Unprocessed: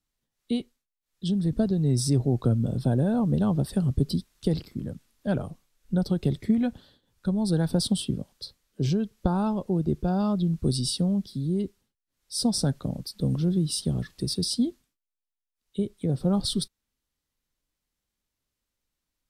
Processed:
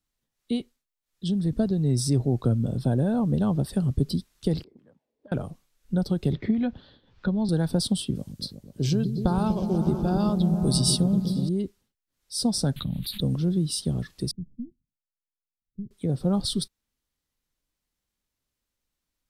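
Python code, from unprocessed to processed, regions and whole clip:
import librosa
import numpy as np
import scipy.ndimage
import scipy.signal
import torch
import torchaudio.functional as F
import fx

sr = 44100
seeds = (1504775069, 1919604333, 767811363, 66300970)

y = fx.chain(x, sr, fx.peak_eq(hz=1300.0, db=-12.5, octaves=0.64),
    fx.auto_wah(base_hz=350.0, top_hz=1500.0, q=3.5, full_db=-28.0, direction='up'),
    fx.band_squash(depth_pct=100), at=(4.64, 5.32))
y = fx.chain(y, sr, fx.lowpass(hz=4400.0, slope=24),
    fx.band_squash(depth_pct=70), at=(6.33, 7.49))
y = fx.chain(y, sr, fx.high_shelf(hz=4100.0, db=8.5),
    fx.echo_opening(ms=122, hz=200, octaves=1, feedback_pct=70, wet_db=-3), at=(8.15, 11.49))
y = fx.chain(y, sr, fx.curve_eq(hz=(190.0, 470.0, 1300.0, 3800.0, 5600.0, 11000.0), db=(0, -18, -6, 10, -26, 1)),
    fx.env_flatten(amount_pct=70), at=(12.76, 13.21))
y = fx.chain(y, sr, fx.halfwave_gain(db=-3.0),
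    fx.ladder_lowpass(hz=230.0, resonance_pct=25), at=(14.31, 15.91))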